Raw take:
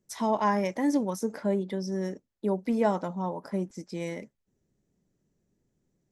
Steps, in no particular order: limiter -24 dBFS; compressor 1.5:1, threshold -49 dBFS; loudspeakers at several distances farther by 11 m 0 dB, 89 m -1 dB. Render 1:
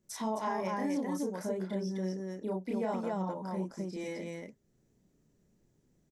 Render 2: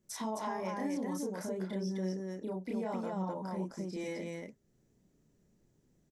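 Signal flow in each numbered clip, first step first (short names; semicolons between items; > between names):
loudspeakers at several distances > compressor > limiter; limiter > loudspeakers at several distances > compressor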